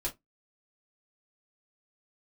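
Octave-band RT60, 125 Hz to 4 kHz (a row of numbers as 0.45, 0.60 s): 0.20, 0.20, 0.15, 0.15, 0.15, 0.10 s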